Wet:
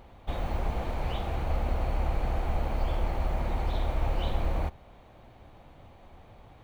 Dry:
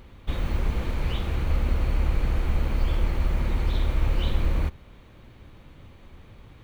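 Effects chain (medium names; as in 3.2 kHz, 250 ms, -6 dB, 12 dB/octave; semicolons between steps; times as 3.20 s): peaking EQ 730 Hz +14 dB 0.79 oct; trim -5.5 dB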